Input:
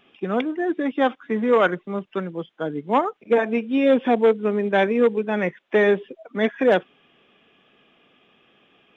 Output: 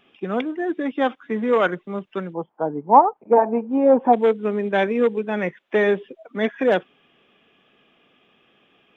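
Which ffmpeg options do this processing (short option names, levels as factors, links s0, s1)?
-filter_complex "[0:a]asplit=3[s0][s1][s2];[s0]afade=t=out:st=2.33:d=0.02[s3];[s1]lowpass=f=880:t=q:w=4.8,afade=t=in:st=2.33:d=0.02,afade=t=out:st=4.12:d=0.02[s4];[s2]afade=t=in:st=4.12:d=0.02[s5];[s3][s4][s5]amix=inputs=3:normalize=0,volume=0.891"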